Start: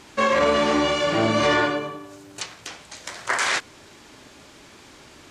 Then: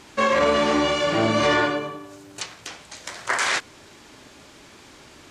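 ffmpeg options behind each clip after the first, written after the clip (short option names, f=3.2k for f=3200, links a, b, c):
-af anull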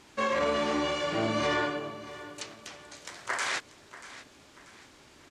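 -af "aecho=1:1:637|1274|1911:0.158|0.0602|0.0229,volume=-8.5dB"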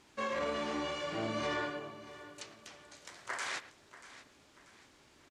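-filter_complex "[0:a]asplit=2[a][b];[b]adelay=110,highpass=300,lowpass=3.4k,asoftclip=type=hard:threshold=-26dB,volume=-15dB[c];[a][c]amix=inputs=2:normalize=0,volume=-7.5dB"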